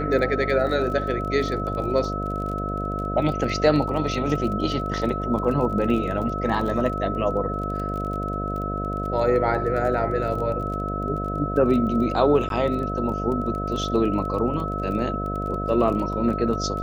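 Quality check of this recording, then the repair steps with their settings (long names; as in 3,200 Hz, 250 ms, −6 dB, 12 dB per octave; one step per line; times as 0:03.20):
mains buzz 50 Hz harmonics 14 −29 dBFS
surface crackle 25 per second −31 dBFS
whistle 1,300 Hz −29 dBFS
0:12.49–0:12.50: drop-out 12 ms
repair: click removal
hum removal 50 Hz, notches 14
notch filter 1,300 Hz, Q 30
repair the gap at 0:12.49, 12 ms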